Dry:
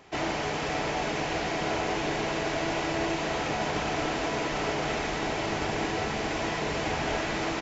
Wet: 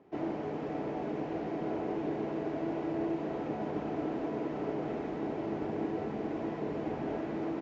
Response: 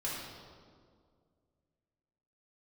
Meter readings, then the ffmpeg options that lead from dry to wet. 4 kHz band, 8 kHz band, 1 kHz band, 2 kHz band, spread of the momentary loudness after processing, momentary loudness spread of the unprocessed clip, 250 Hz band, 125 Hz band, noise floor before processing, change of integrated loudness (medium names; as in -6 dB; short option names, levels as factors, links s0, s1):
-23.0 dB, no reading, -10.0 dB, -18.0 dB, 2 LU, 1 LU, -0.5 dB, -6.5 dB, -31 dBFS, -6.5 dB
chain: -af "bandpass=f=290:t=q:w=1.2:csg=0"